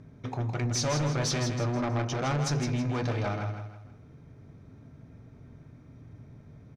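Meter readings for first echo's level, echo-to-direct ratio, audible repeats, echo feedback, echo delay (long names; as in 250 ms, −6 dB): −7.0 dB, −6.5 dB, 4, 37%, 161 ms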